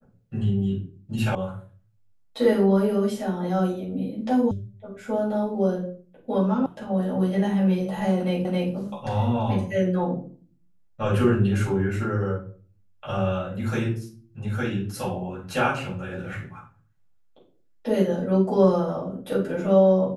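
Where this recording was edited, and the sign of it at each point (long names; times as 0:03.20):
0:01.35: cut off before it has died away
0:04.51: cut off before it has died away
0:06.66: cut off before it has died away
0:08.45: the same again, the last 0.27 s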